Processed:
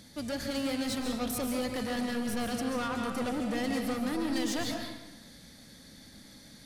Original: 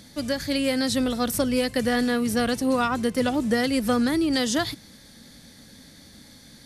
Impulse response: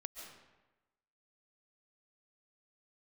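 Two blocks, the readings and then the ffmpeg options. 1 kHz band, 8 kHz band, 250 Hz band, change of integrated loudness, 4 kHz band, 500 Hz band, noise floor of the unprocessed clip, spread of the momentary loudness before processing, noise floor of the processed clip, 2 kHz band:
-8.0 dB, -7.5 dB, -8.5 dB, -9.0 dB, -8.5 dB, -10.0 dB, -50 dBFS, 4 LU, -53 dBFS, -9.0 dB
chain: -filter_complex "[0:a]asoftclip=type=tanh:threshold=0.0562[s0];[1:a]atrim=start_sample=2205[s1];[s0][s1]afir=irnorm=-1:irlink=0"

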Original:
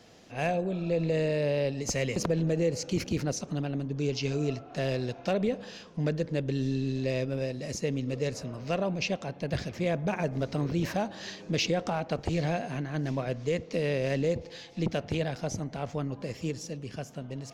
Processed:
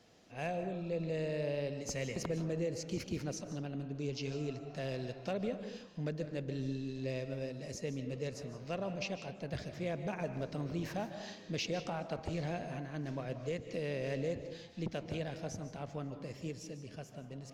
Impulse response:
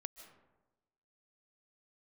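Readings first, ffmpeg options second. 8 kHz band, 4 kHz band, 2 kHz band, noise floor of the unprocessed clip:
-9.0 dB, -8.5 dB, -8.5 dB, -48 dBFS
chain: -filter_complex "[1:a]atrim=start_sample=2205,afade=t=out:st=0.41:d=0.01,atrim=end_sample=18522[s0];[0:a][s0]afir=irnorm=-1:irlink=0,volume=0.596"

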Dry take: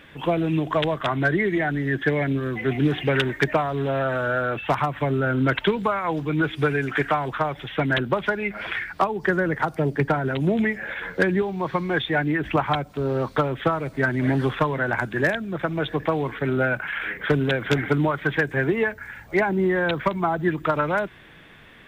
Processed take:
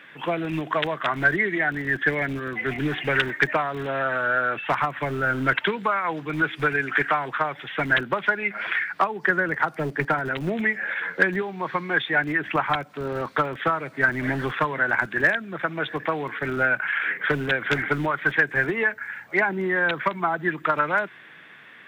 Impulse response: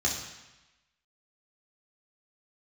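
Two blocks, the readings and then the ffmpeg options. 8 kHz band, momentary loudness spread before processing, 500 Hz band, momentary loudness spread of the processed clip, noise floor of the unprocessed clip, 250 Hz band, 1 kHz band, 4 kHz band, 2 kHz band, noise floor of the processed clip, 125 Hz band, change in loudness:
no reading, 4 LU, -4.0 dB, 6 LU, -47 dBFS, -5.5 dB, +0.5 dB, -1.0 dB, +4.0 dB, -47 dBFS, -7.5 dB, -0.5 dB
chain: -filter_complex "[0:a]equalizer=f=1700:w=0.8:g=10,acrossover=split=120[s0][s1];[s0]acrusher=bits=3:dc=4:mix=0:aa=0.000001[s2];[s2][s1]amix=inputs=2:normalize=0,volume=0.531"

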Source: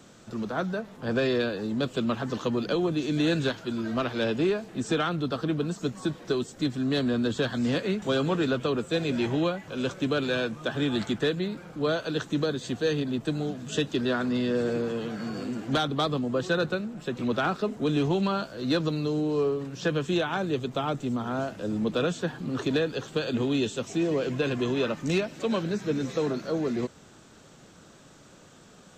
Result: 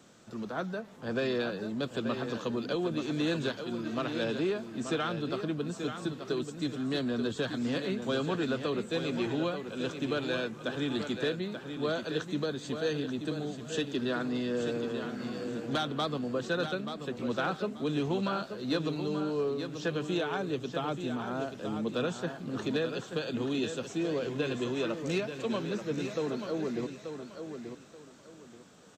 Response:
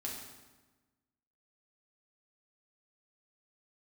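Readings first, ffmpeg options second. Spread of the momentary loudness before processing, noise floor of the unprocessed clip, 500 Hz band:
5 LU, -53 dBFS, -4.5 dB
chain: -filter_complex "[0:a]lowshelf=f=69:g=-11,asplit=2[s0][s1];[s1]aecho=0:1:883|1766|2649:0.398|0.104|0.0269[s2];[s0][s2]amix=inputs=2:normalize=0,volume=0.562"

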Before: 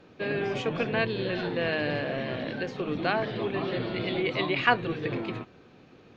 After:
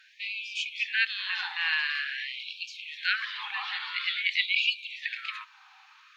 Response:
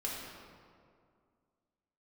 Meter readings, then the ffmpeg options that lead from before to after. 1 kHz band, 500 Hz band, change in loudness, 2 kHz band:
-9.5 dB, under -40 dB, 0.0 dB, +3.0 dB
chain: -filter_complex "[0:a]acrossover=split=560|1300[s0][s1][s2];[s1]acompressor=threshold=0.00251:ratio=4[s3];[s0][s3][s2]amix=inputs=3:normalize=0,afftfilt=real='re*gte(b*sr/1024,740*pow(2300/740,0.5+0.5*sin(2*PI*0.48*pts/sr)))':imag='im*gte(b*sr/1024,740*pow(2300/740,0.5+0.5*sin(2*PI*0.48*pts/sr)))':win_size=1024:overlap=0.75,volume=2.24"

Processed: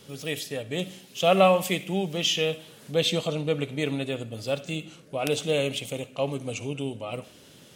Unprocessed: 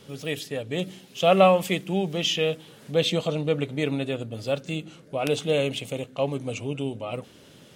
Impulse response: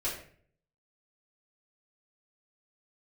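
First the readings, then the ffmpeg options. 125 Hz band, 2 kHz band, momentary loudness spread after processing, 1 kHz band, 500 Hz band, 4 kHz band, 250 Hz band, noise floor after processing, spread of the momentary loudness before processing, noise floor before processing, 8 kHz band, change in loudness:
-2.0 dB, 0.0 dB, 13 LU, -1.5 dB, -2.0 dB, +0.5 dB, -2.0 dB, -52 dBFS, 13 LU, -51 dBFS, +3.0 dB, -1.5 dB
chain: -filter_complex "[0:a]highshelf=f=4200:g=6.5,asplit=2[s0][s1];[s1]highpass=760[s2];[1:a]atrim=start_sample=2205,adelay=52[s3];[s2][s3]afir=irnorm=-1:irlink=0,volume=0.119[s4];[s0][s4]amix=inputs=2:normalize=0,volume=0.794"

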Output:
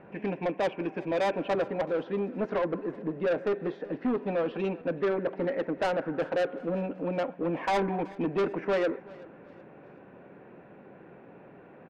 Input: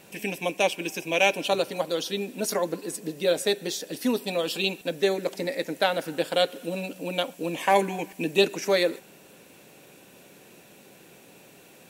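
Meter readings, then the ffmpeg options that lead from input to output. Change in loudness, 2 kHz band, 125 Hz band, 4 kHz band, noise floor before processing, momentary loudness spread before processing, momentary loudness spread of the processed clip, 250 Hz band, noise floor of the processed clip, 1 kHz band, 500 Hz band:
-4.0 dB, -7.5 dB, +0.5 dB, -16.5 dB, -52 dBFS, 9 LU, 5 LU, -0.5 dB, -52 dBFS, -4.0 dB, -2.5 dB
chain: -af "lowpass=f=1700:w=0.5412,lowpass=f=1700:w=1.3066,asoftclip=type=tanh:threshold=0.0501,aecho=1:1:377|754|1131:0.0794|0.0318|0.0127,volume=1.41"

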